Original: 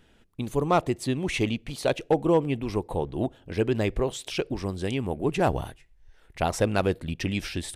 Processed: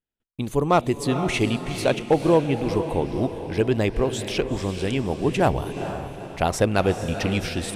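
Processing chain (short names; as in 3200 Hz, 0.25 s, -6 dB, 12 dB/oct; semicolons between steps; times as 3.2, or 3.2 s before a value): gate -53 dBFS, range -37 dB; on a send: diffused feedback echo 0.457 s, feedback 45%, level -9 dB; on the sum: gain +3.5 dB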